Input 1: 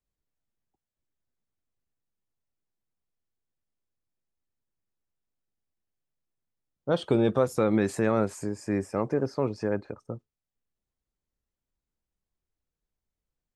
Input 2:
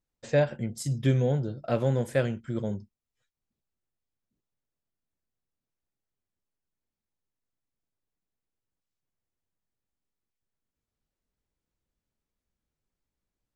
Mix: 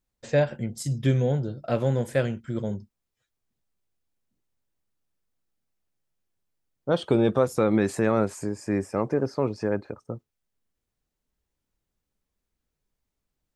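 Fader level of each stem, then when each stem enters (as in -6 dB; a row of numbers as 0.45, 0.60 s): +2.0, +1.5 dB; 0.00, 0.00 s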